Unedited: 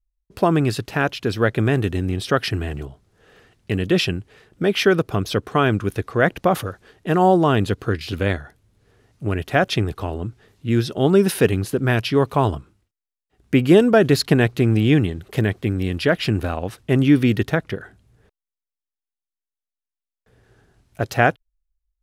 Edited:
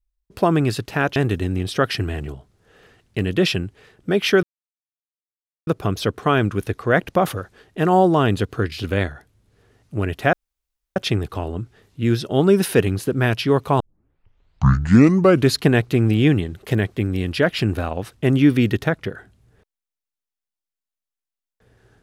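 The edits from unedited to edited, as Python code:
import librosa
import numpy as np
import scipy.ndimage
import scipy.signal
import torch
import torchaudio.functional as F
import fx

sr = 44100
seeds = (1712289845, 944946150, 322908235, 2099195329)

y = fx.edit(x, sr, fx.cut(start_s=1.16, length_s=0.53),
    fx.insert_silence(at_s=4.96, length_s=1.24),
    fx.insert_room_tone(at_s=9.62, length_s=0.63),
    fx.tape_start(start_s=12.46, length_s=1.76), tone=tone)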